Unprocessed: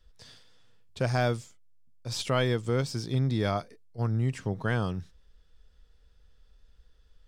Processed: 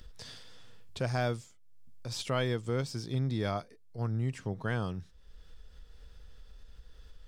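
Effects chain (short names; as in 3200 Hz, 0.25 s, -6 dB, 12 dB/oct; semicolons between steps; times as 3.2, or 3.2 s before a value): gate with hold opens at -58 dBFS; upward compressor, threshold -32 dBFS; gain -4.5 dB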